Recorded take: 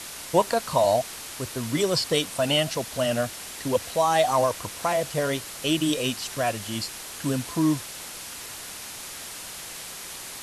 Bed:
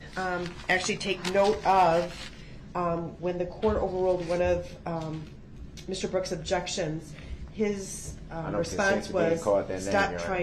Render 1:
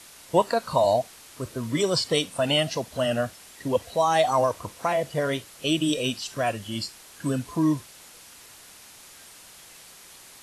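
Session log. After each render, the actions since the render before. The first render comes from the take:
noise reduction from a noise print 10 dB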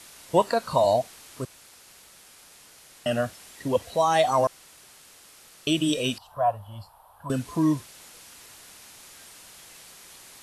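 0:01.45–0:03.06: fill with room tone
0:04.47–0:05.67: fill with room tone
0:06.18–0:07.30: drawn EQ curve 100 Hz 0 dB, 220 Hz −17 dB, 340 Hz −23 dB, 610 Hz +1 dB, 910 Hz +10 dB, 2,100 Hz −23 dB, 3,300 Hz −17 dB, 6,700 Hz −30 dB, 12,000 Hz −9 dB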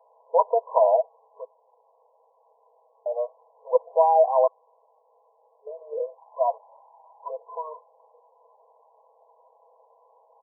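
comb filter 6.1 ms, depth 70%
brick-wall band-pass 420–1,100 Hz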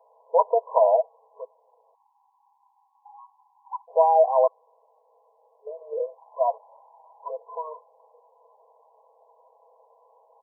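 parametric band 360 Hz +11.5 dB 0.23 octaves
0:01.94–0:03.88: time-frequency box erased 350–770 Hz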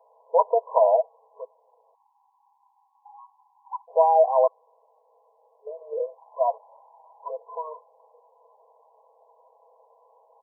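no processing that can be heard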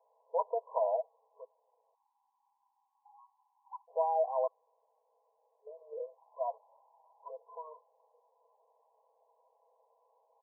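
level −12.5 dB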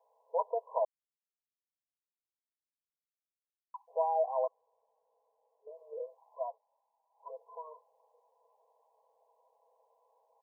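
0:00.85–0:03.74: silence
0:04.45–0:05.68: low-pass filter 1,000 Hz 6 dB per octave
0:06.39–0:07.27: duck −14 dB, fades 0.17 s

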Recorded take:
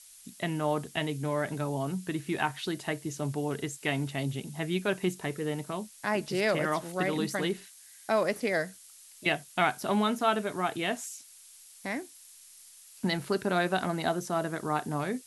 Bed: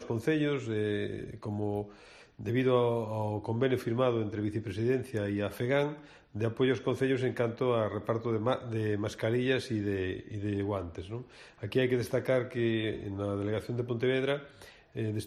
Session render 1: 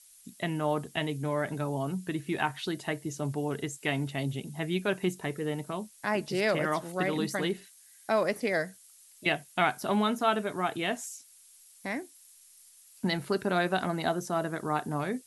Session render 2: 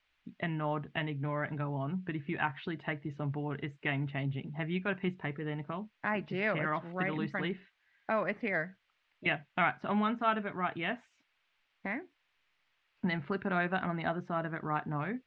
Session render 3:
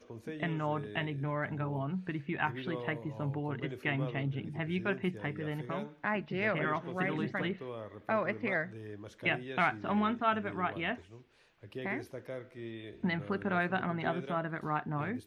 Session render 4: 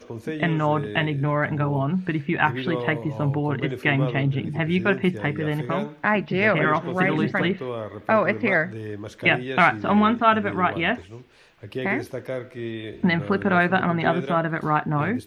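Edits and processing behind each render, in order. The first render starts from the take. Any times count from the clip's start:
broadband denoise 6 dB, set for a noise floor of −53 dBFS
low-pass filter 2,600 Hz 24 dB per octave; dynamic equaliser 460 Hz, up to −8 dB, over −42 dBFS, Q 0.79
mix in bed −14 dB
level +12 dB

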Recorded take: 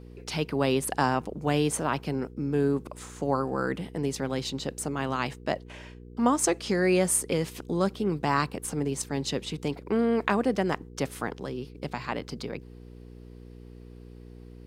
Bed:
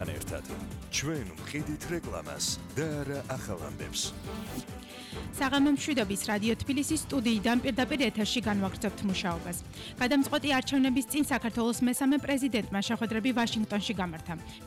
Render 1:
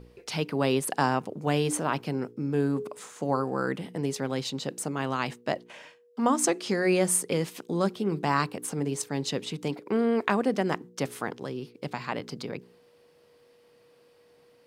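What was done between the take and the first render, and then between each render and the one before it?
hum removal 60 Hz, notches 7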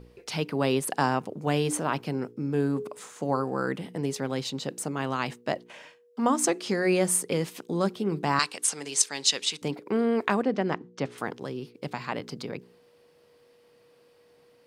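0:08.39–0:09.62: meter weighting curve ITU-R 468
0:10.42–0:11.18: high-frequency loss of the air 130 metres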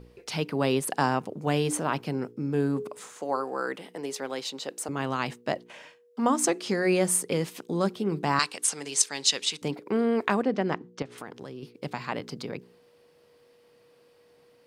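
0:03.18–0:04.89: high-pass filter 390 Hz
0:11.02–0:11.63: downward compressor 3 to 1, threshold −37 dBFS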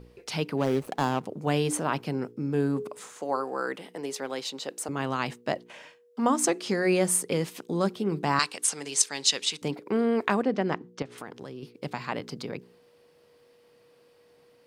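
0:00.57–0:01.24: running median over 25 samples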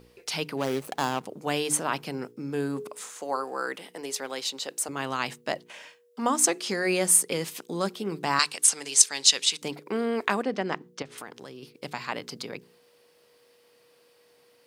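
spectral tilt +2 dB per octave
mains-hum notches 50/100/150 Hz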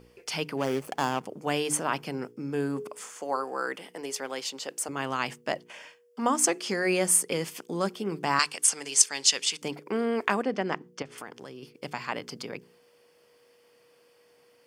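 high-shelf EQ 8,400 Hz −5 dB
notch filter 3,900 Hz, Q 5.5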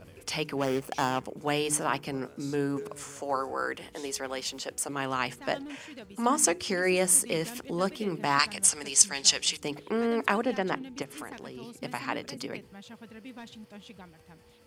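mix in bed −17 dB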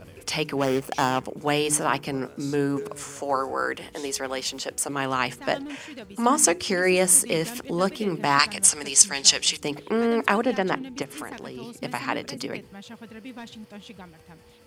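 level +5 dB
brickwall limiter −1 dBFS, peak gain reduction 1.5 dB

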